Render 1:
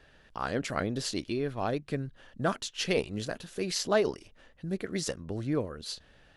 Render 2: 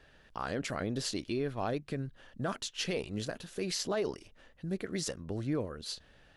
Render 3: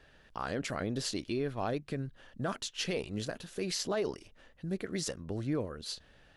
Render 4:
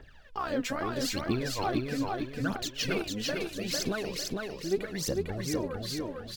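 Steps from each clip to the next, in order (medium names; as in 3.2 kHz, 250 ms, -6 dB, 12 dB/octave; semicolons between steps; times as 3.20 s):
peak limiter -22 dBFS, peak gain reduction 9 dB; trim -1.5 dB
no audible change
phaser 0.78 Hz, delay 4.2 ms, feedback 77%; on a send: feedback delay 451 ms, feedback 39%, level -3 dB; on the sum: decimation joined by straight lines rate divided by 2×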